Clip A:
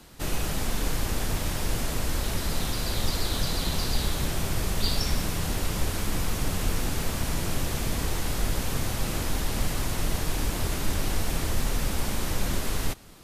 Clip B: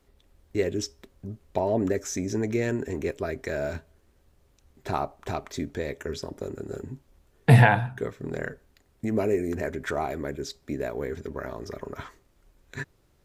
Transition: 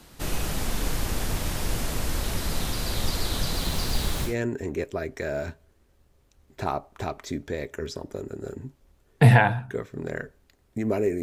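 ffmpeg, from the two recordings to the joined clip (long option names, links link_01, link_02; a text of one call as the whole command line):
ffmpeg -i cue0.wav -i cue1.wav -filter_complex "[0:a]asettb=1/sr,asplit=3[link_01][link_02][link_03];[link_01]atrim=end=3.534[link_04];[link_02]atrim=start=3.53:end=4.36,asetpts=PTS-STARTPTS,afade=type=in:duration=0.004:curve=qsin,afade=type=out:start_time=0.826:duration=0.004:curve=qsin,acrusher=bits=8:dc=4:mix=0:aa=0.000001[link_05];[link_03]atrim=start=4.356[link_06];[link_04][link_05]acrossfade=duration=0.004:curve1=hsin:curve2=qsin[link_07];[link_07][link_06]acrossfade=duration=0.004:curve1=qsin:curve2=hsin,apad=whole_dur=11.22,atrim=end=11.22,atrim=end=4.36,asetpts=PTS-STARTPTS[link_08];[1:a]atrim=start=2.49:end=9.49,asetpts=PTS-STARTPTS[link_09];[link_08][link_09]acrossfade=duration=0.14:curve1=tri:curve2=tri" out.wav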